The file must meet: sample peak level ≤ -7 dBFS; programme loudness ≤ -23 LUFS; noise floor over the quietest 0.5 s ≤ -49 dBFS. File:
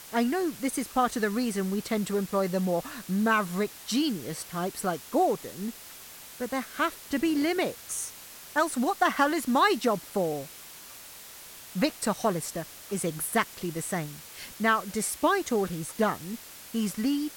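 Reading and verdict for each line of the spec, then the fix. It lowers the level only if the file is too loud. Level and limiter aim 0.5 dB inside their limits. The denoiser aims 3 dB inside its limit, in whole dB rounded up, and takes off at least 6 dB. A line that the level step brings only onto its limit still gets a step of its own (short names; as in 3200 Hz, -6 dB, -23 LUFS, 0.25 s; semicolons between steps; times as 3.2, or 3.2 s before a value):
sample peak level -10.5 dBFS: OK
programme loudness -28.5 LUFS: OK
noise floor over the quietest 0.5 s -46 dBFS: fail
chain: denoiser 6 dB, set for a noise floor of -46 dBFS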